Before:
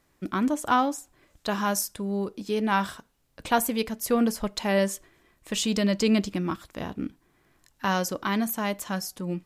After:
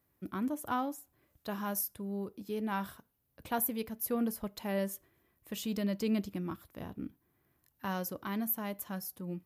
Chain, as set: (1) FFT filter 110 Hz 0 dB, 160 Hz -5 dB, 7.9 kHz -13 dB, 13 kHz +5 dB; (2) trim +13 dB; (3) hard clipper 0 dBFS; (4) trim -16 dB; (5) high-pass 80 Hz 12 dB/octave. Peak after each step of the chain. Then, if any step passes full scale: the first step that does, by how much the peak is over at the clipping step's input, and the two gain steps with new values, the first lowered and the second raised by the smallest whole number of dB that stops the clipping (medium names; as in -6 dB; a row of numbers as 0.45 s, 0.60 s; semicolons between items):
-15.5 dBFS, -2.5 dBFS, -2.5 dBFS, -18.5 dBFS, -18.5 dBFS; nothing clips